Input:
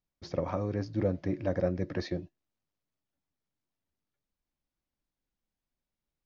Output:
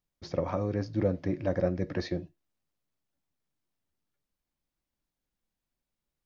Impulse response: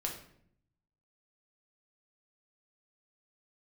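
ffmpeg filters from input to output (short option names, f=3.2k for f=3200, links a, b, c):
-filter_complex "[0:a]asplit=2[a][b];[1:a]atrim=start_sample=2205,atrim=end_sample=3528[c];[b][c]afir=irnorm=-1:irlink=0,volume=-14dB[d];[a][d]amix=inputs=2:normalize=0"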